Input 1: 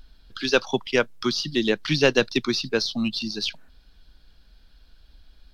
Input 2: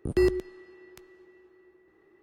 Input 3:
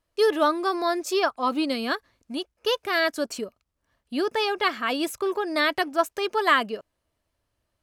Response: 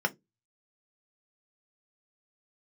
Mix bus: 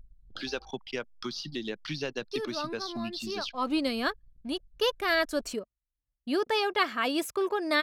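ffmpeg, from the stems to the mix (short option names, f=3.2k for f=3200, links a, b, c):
-filter_complex "[0:a]acompressor=threshold=-33dB:ratio=2.5,volume=-3.5dB,asplit=2[a][b];[1:a]alimiter=level_in=0.5dB:limit=-24dB:level=0:latency=1:release=31,volume=-0.5dB,aeval=exprs='val(0)*sin(2*PI*420*n/s)':c=same,adelay=300,volume=-18.5dB[c];[2:a]adelay=2150,volume=-2.5dB[d];[b]apad=whole_len=439869[e];[d][e]sidechaincompress=threshold=-48dB:ratio=12:attack=50:release=188[f];[a][c][f]amix=inputs=3:normalize=0,anlmdn=0.00398"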